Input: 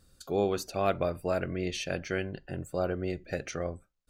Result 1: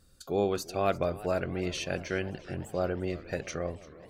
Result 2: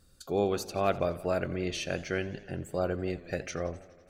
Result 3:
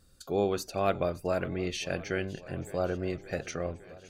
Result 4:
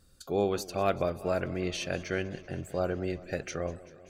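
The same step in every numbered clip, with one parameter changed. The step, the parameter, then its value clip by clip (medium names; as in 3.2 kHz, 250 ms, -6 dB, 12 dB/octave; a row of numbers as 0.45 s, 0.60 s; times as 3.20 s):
modulated delay, time: 346 ms, 84 ms, 565 ms, 193 ms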